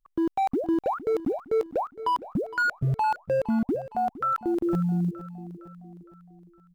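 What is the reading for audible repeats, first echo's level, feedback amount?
4, -15.5 dB, 50%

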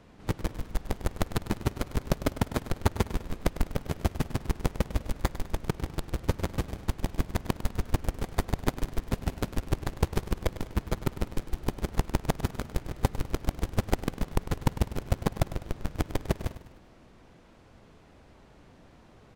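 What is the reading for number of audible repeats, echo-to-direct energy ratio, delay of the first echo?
4, -13.0 dB, 0.101 s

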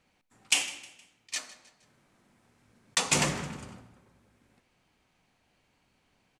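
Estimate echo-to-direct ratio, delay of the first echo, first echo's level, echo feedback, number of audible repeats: -18.0 dB, 0.156 s, -19.0 dB, 43%, 3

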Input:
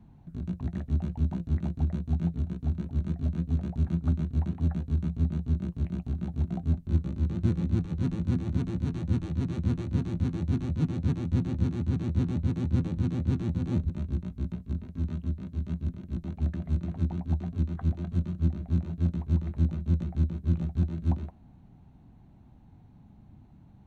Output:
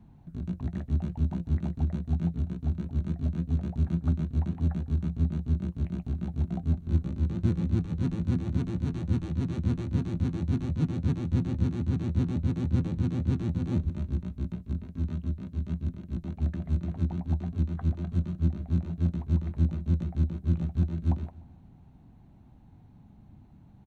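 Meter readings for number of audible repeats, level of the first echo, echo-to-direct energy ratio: 3, -21.5 dB, -20.0 dB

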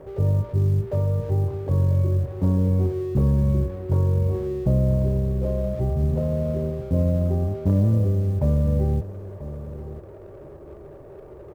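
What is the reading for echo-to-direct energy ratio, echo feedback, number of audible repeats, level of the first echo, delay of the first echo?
-14.5 dB, 16%, 2, -14.5 dB, 0.989 s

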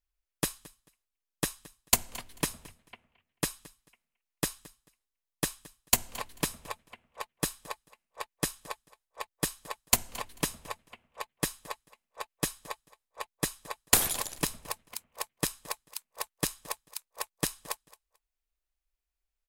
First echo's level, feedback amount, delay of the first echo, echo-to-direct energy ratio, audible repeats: -21.0 dB, 20%, 0.22 s, -21.0 dB, 2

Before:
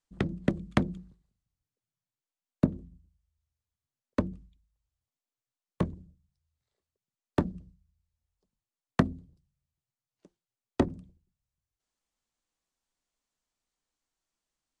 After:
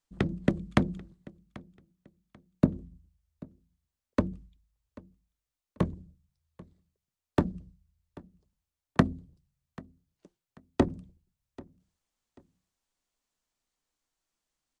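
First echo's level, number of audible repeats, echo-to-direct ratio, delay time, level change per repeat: -22.0 dB, 2, -21.5 dB, 0.788 s, -11.0 dB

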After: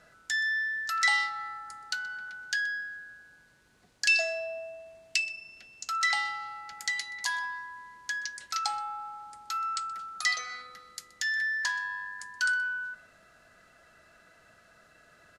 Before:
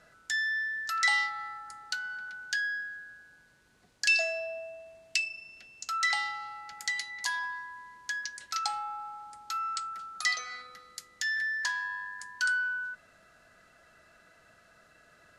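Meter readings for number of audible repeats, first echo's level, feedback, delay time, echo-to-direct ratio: 1, -21.5 dB, no steady repeat, 0.125 s, -21.5 dB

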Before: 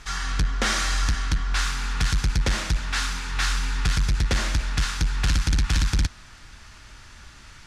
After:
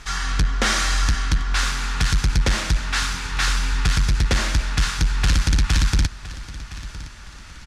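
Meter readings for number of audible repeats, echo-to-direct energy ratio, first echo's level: 2, -16.0 dB, -16.5 dB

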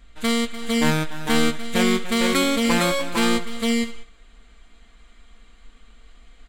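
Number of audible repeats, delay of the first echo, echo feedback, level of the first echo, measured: 3, 0.295 s, no steady repeat, -14.0 dB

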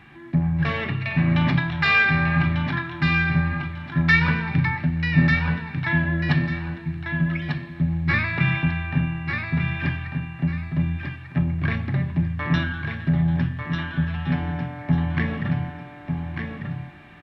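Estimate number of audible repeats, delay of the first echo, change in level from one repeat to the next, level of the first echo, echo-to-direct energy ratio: 2, 1.195 s, -11.5 dB, -5.5 dB, -5.0 dB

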